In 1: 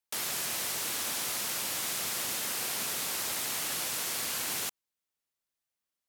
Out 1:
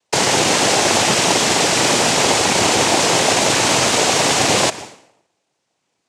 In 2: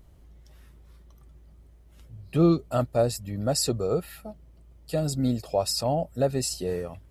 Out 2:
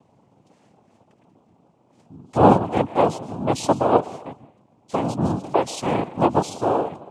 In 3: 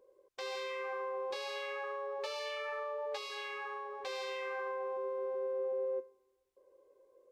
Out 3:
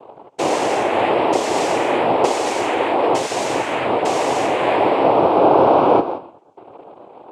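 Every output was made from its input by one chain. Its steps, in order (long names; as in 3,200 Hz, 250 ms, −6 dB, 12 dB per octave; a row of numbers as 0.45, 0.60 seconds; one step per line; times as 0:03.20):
graphic EQ with 15 bands 400 Hz +10 dB, 1,600 Hz −7 dB, 6,300 Hz −12 dB
dense smooth reverb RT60 0.74 s, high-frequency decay 0.8×, pre-delay 105 ms, DRR 15.5 dB
cochlear-implant simulation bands 4
normalise the peak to −1.5 dBFS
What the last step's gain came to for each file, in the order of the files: +24.0, +2.0, +18.5 decibels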